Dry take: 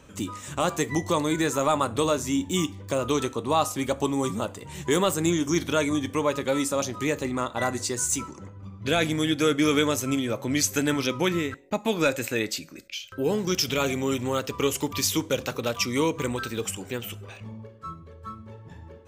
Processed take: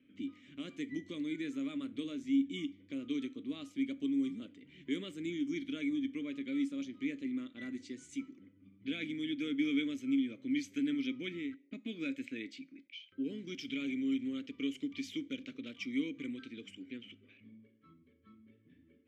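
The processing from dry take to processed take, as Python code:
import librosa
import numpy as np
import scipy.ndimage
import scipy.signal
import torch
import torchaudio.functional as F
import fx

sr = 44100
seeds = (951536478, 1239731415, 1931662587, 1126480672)

y = fx.env_lowpass(x, sr, base_hz=2800.0, full_db=-21.5)
y = fx.vowel_filter(y, sr, vowel='i')
y = y * 10.0 ** (-3.0 / 20.0)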